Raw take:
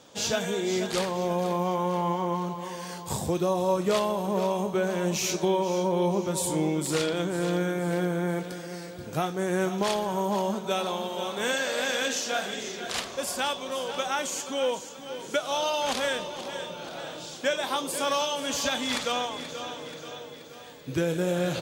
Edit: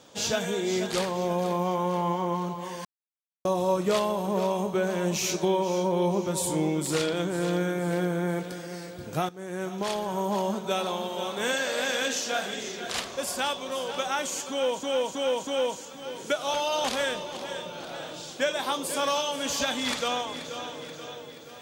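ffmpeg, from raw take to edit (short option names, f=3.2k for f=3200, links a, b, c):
-filter_complex "[0:a]asplit=9[a][b][c][d][e][f][g][h][i];[a]atrim=end=2.85,asetpts=PTS-STARTPTS,afade=t=out:st=2.846:d=0.004:c=hsin[j];[b]atrim=start=2.85:end=3.45,asetpts=PTS-STARTPTS,volume=0[k];[c]atrim=start=3.45:end=9.29,asetpts=PTS-STARTPTS,afade=t=in:d=0.004:c=hsin,afade=t=out:st=5.836:d=0.004:c=hsin:silence=0.188365[l];[d]atrim=start=9.29:end=14.832,asetpts=PTS-STARTPTS,afade=t=in:d=1.39:c=qsin:silence=0.188365[m];[e]atrim=start=14.508:end=14.832[n];[f]atrim=start=14.508:end=14.832[o];[g]atrim=start=14.508:end=15.582[p];[h]atrim=start=15.578:end=15.882,asetpts=PTS-STARTPTS,areverse[q];[i]atrim=start=15.878[r];[j][k][l][m]concat=n=4:v=0:a=1[s];[s][n]acrossfade=d=0.004:c1=hsin:c2=hsin[t];[t][o]acrossfade=d=0.004:c1=hsin:c2=hsin[u];[u][p]acrossfade=d=0.004:c1=hsin:c2=hsin[v];[v][q]acrossfade=d=0.004:c1=hsin:c2=hsin[w];[w][r]acrossfade=d=0.004:c1=hsin:c2=hsin"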